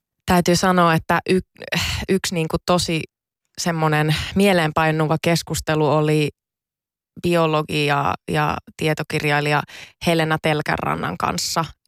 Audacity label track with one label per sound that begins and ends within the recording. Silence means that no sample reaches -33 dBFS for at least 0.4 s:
3.580000	6.300000	sound